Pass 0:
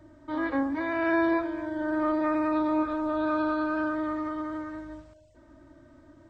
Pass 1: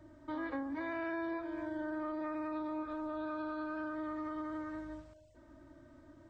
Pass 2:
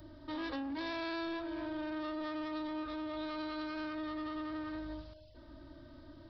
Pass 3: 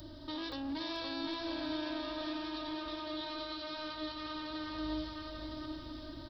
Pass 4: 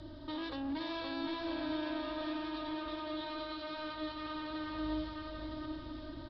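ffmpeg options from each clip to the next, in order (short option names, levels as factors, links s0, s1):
-af "acompressor=threshold=0.0251:ratio=6,volume=0.631"
-af "lowshelf=f=63:g=8.5,aresample=11025,asoftclip=type=tanh:threshold=0.0126,aresample=44100,aexciter=amount=3.8:drive=6.5:freq=3100,volume=1.41"
-filter_complex "[0:a]highshelf=f=2800:t=q:w=1.5:g=7,alimiter=level_in=3.98:limit=0.0631:level=0:latency=1:release=231,volume=0.251,asplit=2[s0][s1];[s1]aecho=0:1:520|962|1338|1657|1928:0.631|0.398|0.251|0.158|0.1[s2];[s0][s2]amix=inputs=2:normalize=0,volume=1.5"
-af "lowpass=3200,volume=1.12"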